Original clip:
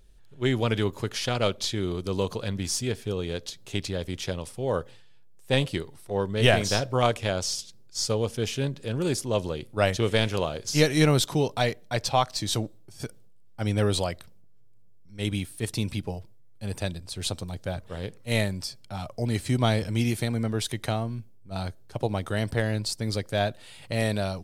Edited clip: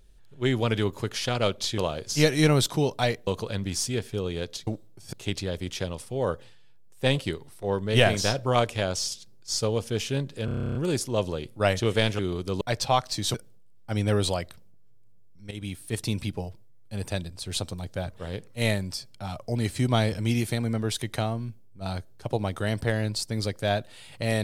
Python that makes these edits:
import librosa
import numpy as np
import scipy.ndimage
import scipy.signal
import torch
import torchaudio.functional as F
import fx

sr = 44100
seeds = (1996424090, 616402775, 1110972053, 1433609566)

y = fx.edit(x, sr, fx.swap(start_s=1.78, length_s=0.42, other_s=10.36, other_length_s=1.49),
    fx.stutter(start_s=8.92, slice_s=0.03, count=11),
    fx.move(start_s=12.58, length_s=0.46, to_s=3.6),
    fx.fade_in_from(start_s=15.21, length_s=0.37, floor_db=-14.0), tone=tone)